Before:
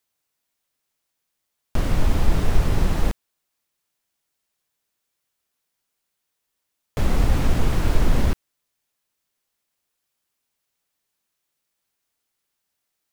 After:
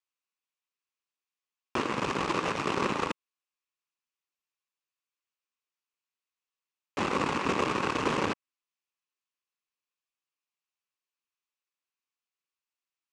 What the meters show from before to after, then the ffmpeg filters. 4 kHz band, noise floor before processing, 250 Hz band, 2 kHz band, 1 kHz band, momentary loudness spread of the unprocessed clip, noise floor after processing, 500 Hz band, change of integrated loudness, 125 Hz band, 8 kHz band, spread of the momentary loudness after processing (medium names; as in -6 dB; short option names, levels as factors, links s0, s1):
-0.5 dB, -79 dBFS, -4.5 dB, +2.0 dB, +3.5 dB, 9 LU, under -85 dBFS, -0.5 dB, -5.5 dB, -17.0 dB, -5.0 dB, 7 LU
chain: -filter_complex "[0:a]acrossover=split=1700|4200[s0][s1][s2];[s0]acompressor=threshold=0.224:ratio=4[s3];[s1]acompressor=threshold=0.00447:ratio=4[s4];[s2]acompressor=threshold=0.00447:ratio=4[s5];[s3][s4][s5]amix=inputs=3:normalize=0,aeval=exprs='0.422*(cos(1*acos(clip(val(0)/0.422,-1,1)))-cos(1*PI/2))+0.075*(cos(7*acos(clip(val(0)/0.422,-1,1)))-cos(7*PI/2))+0.0944*(cos(8*acos(clip(val(0)/0.422,-1,1)))-cos(8*PI/2))':c=same,highpass=290,equalizer=f=670:t=q:w=4:g=-8,equalizer=f=1100:t=q:w=4:g=8,equalizer=f=2600:t=q:w=4:g=8,lowpass=f=7700:w=0.5412,lowpass=f=7700:w=1.3066,volume=0.708"